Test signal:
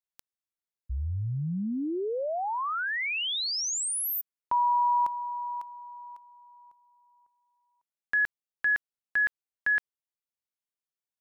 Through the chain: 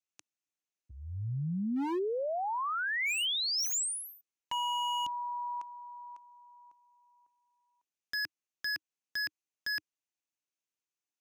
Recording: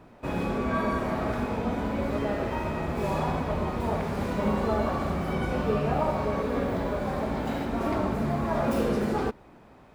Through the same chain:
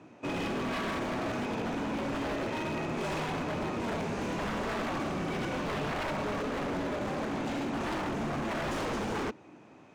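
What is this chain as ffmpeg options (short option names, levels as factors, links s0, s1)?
-af "highpass=f=100:w=0.5412,highpass=f=100:w=1.3066,equalizer=f=310:t=q:w=4:g=8,equalizer=f=2600:t=q:w=4:g=7,equalizer=f=6300:t=q:w=4:g=9,lowpass=f=9300:w=0.5412,lowpass=f=9300:w=1.3066,aeval=exprs='0.0562*(abs(mod(val(0)/0.0562+3,4)-2)-1)':c=same,volume=0.708"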